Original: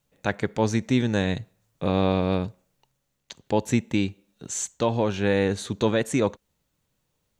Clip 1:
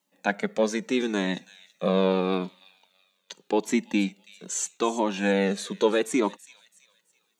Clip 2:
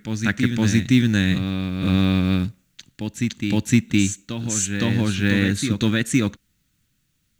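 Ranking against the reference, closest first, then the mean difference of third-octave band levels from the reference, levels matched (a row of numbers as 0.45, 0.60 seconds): 1, 2; 5.0, 7.0 decibels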